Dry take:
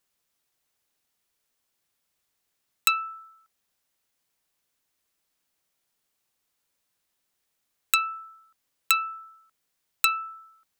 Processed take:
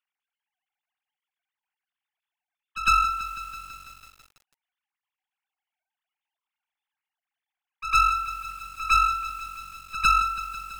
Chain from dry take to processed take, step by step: sine-wave speech; high shelf 2900 Hz +3 dB; in parallel at -2.5 dB: compressor 10:1, threshold -35 dBFS, peak gain reduction 16.5 dB; on the sum: one-sided clip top -30.5 dBFS, bottom -16.5 dBFS; pre-echo 0.104 s -14 dB; lo-fi delay 0.165 s, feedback 80%, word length 8-bit, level -12 dB; gain +7 dB

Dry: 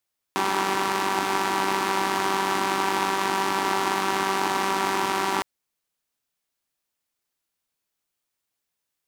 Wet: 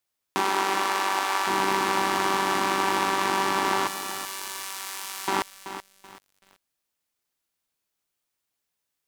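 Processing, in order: 0.41–1.46 HPF 240 Hz -> 650 Hz 12 dB/oct; 3.87–5.28 differentiator; lo-fi delay 0.381 s, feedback 35%, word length 7-bit, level -10.5 dB

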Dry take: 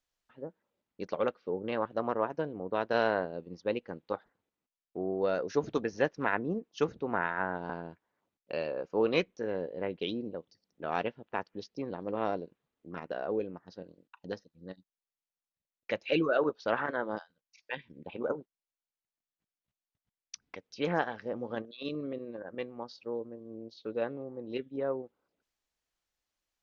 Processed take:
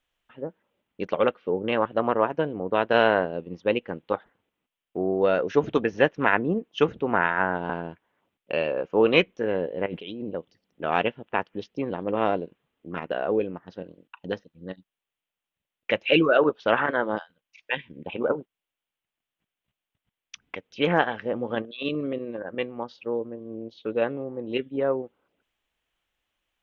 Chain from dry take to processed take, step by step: resonant high shelf 3800 Hz -6.5 dB, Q 3; 9.86–10.28 negative-ratio compressor -43 dBFS, ratio -1; gain +8 dB

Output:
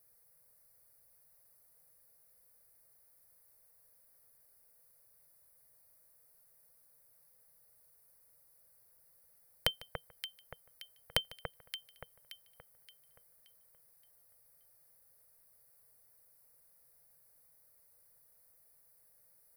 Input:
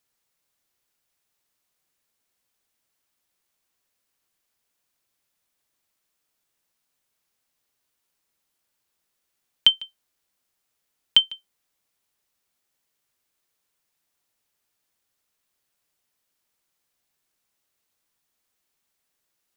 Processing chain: EQ curve 150 Hz 0 dB, 340 Hz -23 dB, 480 Hz +2 dB, 920 Hz -9 dB, 2100 Hz -10 dB, 3100 Hz -29 dB, 4600 Hz -9 dB, 7200 Hz -16 dB, 10000 Hz +3 dB; echo with dull and thin repeats by turns 0.287 s, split 1900 Hz, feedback 61%, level -6 dB; gain +10 dB

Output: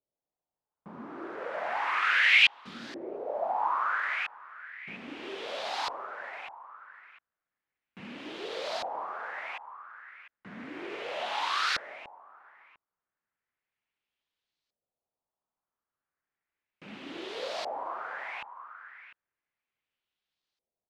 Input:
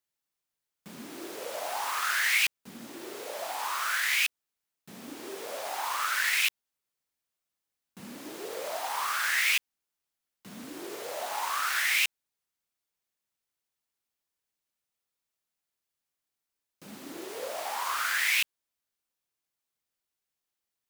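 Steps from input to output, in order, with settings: outdoor echo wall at 120 m, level -19 dB; LFO low-pass saw up 0.34 Hz 550–4500 Hz

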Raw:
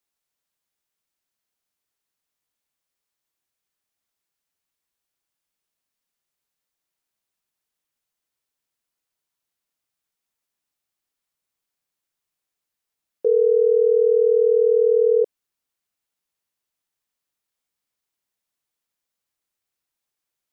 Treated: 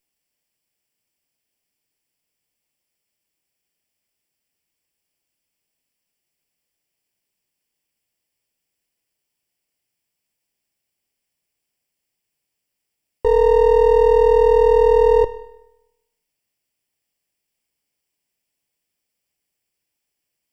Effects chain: minimum comb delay 0.38 ms; in parallel at +3 dB: limiter -17.5 dBFS, peak gain reduction 7.5 dB; on the sum: Schroeder reverb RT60 0.94 s, combs from 25 ms, DRR 18 dB; gain -1.5 dB

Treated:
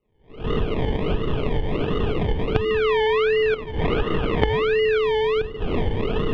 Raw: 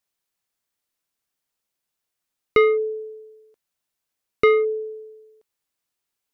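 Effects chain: per-bin compression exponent 0.4; recorder AGC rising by 47 dB/s; expander -21 dBFS; shoebox room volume 1200 m³, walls mixed, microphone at 0.51 m; decimation with a swept rate 26×, swing 60% 1.4 Hz; synth low-pass 3000 Hz, resonance Q 4.5; tilt -4 dB/oct; compressor 10:1, threshold -16 dBFS, peak gain reduction 18.5 dB; 2.69–4.98 dynamic EQ 1500 Hz, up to +6 dB, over -37 dBFS, Q 0.83; gain -2 dB

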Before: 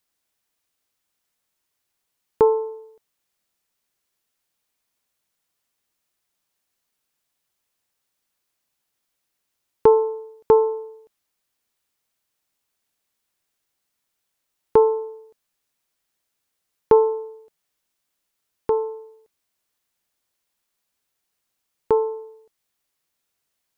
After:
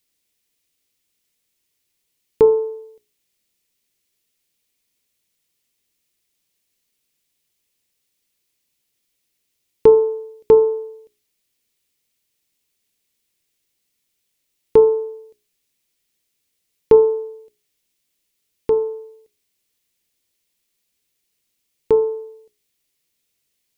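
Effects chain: band shelf 1000 Hz -10 dB; notches 60/120/180/240/300/360/420 Hz; gain +5 dB

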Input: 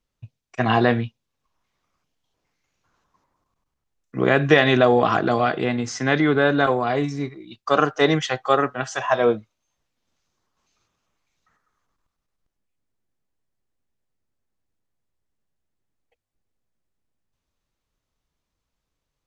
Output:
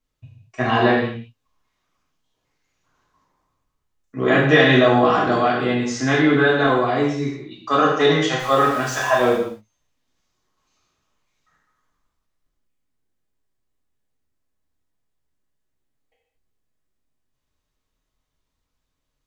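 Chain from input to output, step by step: 8.39–9.37 zero-crossing step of -31.5 dBFS; non-linear reverb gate 0.26 s falling, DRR -5 dB; gain -4 dB

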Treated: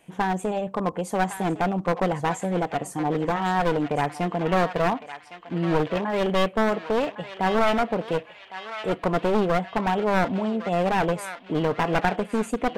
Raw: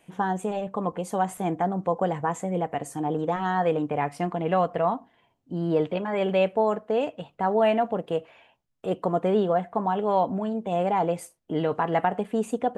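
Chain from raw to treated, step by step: one-sided fold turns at -24.5 dBFS; on a send: narrowing echo 1.108 s, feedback 55%, band-pass 2700 Hz, level -7 dB; on the sum: gain +2.5 dB

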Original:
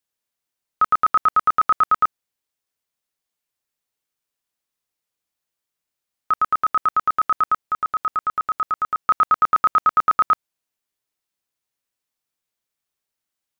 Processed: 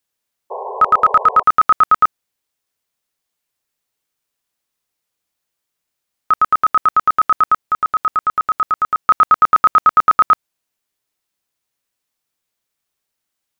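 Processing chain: painted sound noise, 0.5–1.43, 380–1100 Hz -32 dBFS; gain +5.5 dB

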